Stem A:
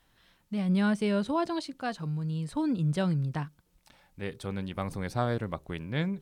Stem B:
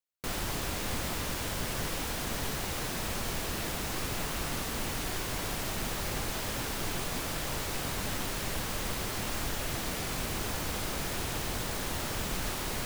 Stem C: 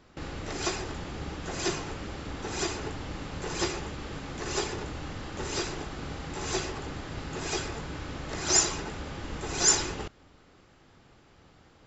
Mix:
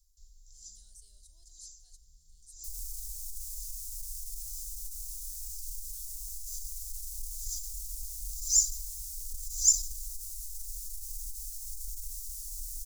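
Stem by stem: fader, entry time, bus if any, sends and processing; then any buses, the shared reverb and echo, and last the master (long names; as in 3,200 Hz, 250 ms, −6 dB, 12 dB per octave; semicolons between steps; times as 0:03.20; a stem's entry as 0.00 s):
−2.0 dB, 0.00 s, no send, no processing
0.0 dB, 2.40 s, no send, no processing
+2.5 dB, 0.00 s, no send, automatic ducking −12 dB, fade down 0.30 s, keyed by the first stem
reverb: not used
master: inverse Chebyshev band-stop filter 110–2,600 Hz, stop band 50 dB; saturating transformer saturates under 190 Hz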